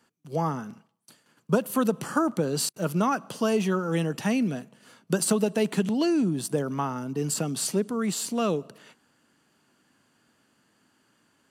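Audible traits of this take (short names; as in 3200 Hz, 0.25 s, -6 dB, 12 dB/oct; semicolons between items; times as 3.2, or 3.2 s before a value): noise floor -69 dBFS; spectral tilt -5.0 dB/oct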